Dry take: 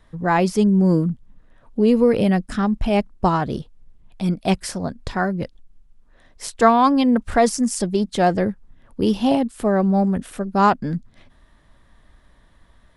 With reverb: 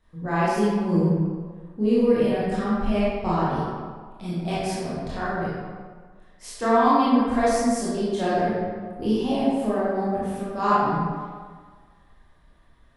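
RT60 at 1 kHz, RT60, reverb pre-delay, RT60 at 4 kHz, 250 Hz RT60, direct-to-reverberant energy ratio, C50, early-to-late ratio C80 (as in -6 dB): 1.7 s, 1.6 s, 20 ms, 1.0 s, 1.5 s, -10.0 dB, -3.5 dB, -1.0 dB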